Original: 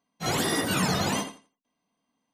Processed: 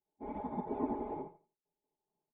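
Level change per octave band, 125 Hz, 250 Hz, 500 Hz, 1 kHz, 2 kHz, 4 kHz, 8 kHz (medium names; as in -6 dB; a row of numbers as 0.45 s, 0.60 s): -20.0 dB, -10.0 dB, -9.0 dB, -10.0 dB, -32.5 dB, under -40 dB, under -40 dB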